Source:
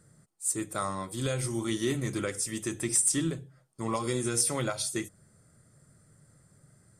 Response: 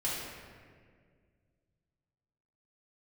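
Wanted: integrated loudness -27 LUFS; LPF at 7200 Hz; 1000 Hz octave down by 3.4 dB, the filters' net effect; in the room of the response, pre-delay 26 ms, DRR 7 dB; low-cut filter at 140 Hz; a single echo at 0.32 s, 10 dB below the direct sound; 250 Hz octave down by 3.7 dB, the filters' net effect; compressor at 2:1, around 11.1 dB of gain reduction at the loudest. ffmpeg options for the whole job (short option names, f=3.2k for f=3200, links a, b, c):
-filter_complex "[0:a]highpass=140,lowpass=7.2k,equalizer=f=250:t=o:g=-4.5,equalizer=f=1k:t=o:g=-4,acompressor=threshold=-48dB:ratio=2,aecho=1:1:320:0.316,asplit=2[a][b];[1:a]atrim=start_sample=2205,adelay=26[c];[b][c]afir=irnorm=-1:irlink=0,volume=-13dB[d];[a][d]amix=inputs=2:normalize=0,volume=15.5dB"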